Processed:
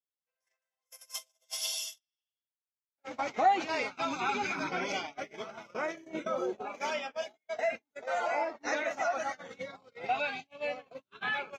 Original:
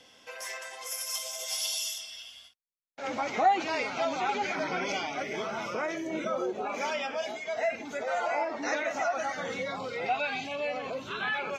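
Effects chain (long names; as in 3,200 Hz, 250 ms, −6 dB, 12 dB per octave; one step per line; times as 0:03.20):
noise gate −32 dBFS, range −49 dB
0:03.91–0:04.70: comb filter 0.8 ms, depth 60%
level −1.5 dB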